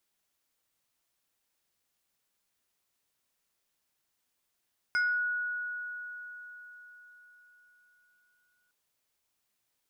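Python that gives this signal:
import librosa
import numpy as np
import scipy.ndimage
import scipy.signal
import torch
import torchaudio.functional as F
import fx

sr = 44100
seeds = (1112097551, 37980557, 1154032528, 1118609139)

y = fx.fm2(sr, length_s=3.76, level_db=-24, carrier_hz=1460.0, ratio=2.46, index=0.55, index_s=0.39, decay_s=4.55, shape='exponential')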